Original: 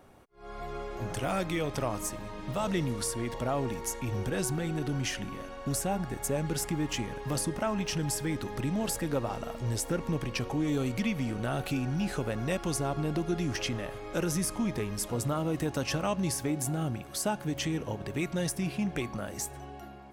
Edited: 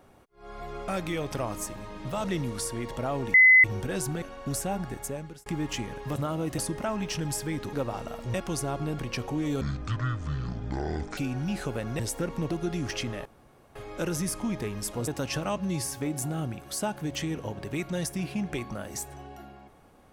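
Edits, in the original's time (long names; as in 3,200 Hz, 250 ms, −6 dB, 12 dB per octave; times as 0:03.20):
0:00.88–0:01.31: remove
0:03.77–0:04.07: beep over 2,030 Hz −12.5 dBFS
0:04.65–0:05.42: remove
0:06.10–0:06.66: fade out
0:08.51–0:09.09: remove
0:09.70–0:10.21: swap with 0:12.51–0:13.16
0:10.83–0:11.69: play speed 55%
0:13.91: splice in room tone 0.50 s
0:15.23–0:15.65: move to 0:07.36
0:16.15–0:16.44: time-stretch 1.5×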